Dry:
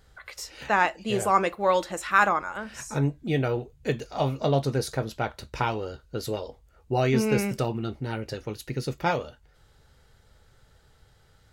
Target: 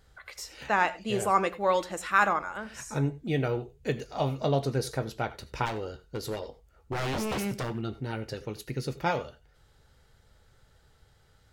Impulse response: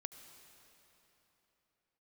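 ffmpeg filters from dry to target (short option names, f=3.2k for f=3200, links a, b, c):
-filter_complex "[0:a]asplit=3[a][b][c];[a]afade=t=out:st=5.65:d=0.02[d];[b]aeval=exprs='0.0708*(abs(mod(val(0)/0.0708+3,4)-2)-1)':c=same,afade=t=in:st=5.65:d=0.02,afade=t=out:st=7.81:d=0.02[e];[c]afade=t=in:st=7.81:d=0.02[f];[d][e][f]amix=inputs=3:normalize=0[g];[1:a]atrim=start_sample=2205,atrim=end_sample=4410,asetrate=42777,aresample=44100[h];[g][h]afir=irnorm=-1:irlink=0,volume=1.5dB"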